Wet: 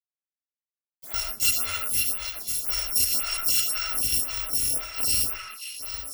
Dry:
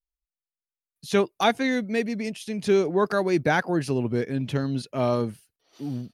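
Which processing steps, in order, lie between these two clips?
bit-reversed sample order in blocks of 256 samples; on a send at -3 dB: reverberation RT60 0.45 s, pre-delay 55 ms; on the sum: de-esser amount 25%; companded quantiser 4-bit; repeats whose band climbs or falls 267 ms, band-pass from 1.7 kHz, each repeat 0.7 oct, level -1.5 dB; lamp-driven phase shifter 1.9 Hz

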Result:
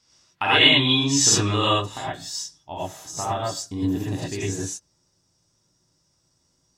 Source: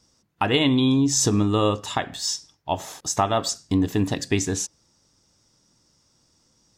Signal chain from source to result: peaking EQ 2.7 kHz +13 dB 3 oct, from 1.69 s -2.5 dB; gated-style reverb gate 140 ms rising, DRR -8 dB; trim -11.5 dB

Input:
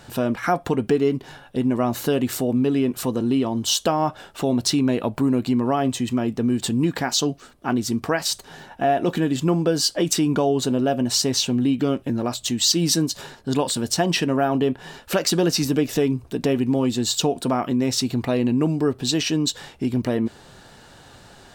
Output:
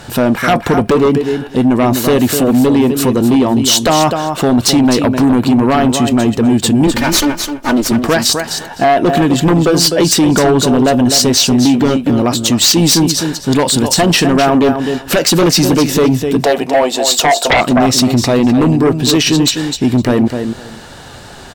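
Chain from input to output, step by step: 6.87–7.92 s: comb filter that takes the minimum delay 3.3 ms; 16.42–17.61 s: resonant high-pass 650 Hz, resonance Q 4.9; on a send: feedback delay 255 ms, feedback 16%, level -9 dB; on the sum: sine folder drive 9 dB, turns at -5.5 dBFS

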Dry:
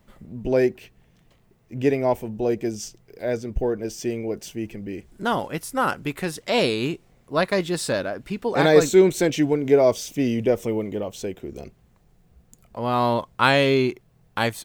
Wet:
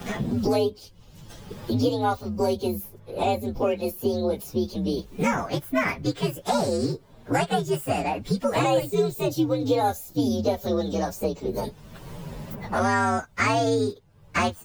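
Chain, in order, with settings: frequency axis rescaled in octaves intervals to 126%; three bands compressed up and down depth 100%

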